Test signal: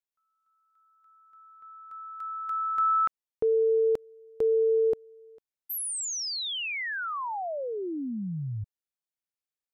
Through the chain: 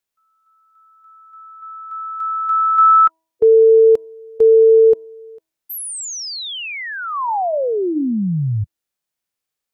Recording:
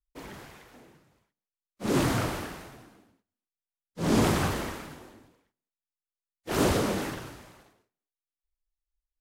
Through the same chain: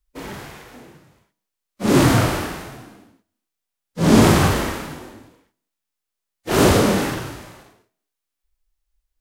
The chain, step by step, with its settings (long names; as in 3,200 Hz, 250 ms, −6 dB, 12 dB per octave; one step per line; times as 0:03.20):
harmonic and percussive parts rebalanced harmonic +9 dB
hum removal 323.8 Hz, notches 3
level +5 dB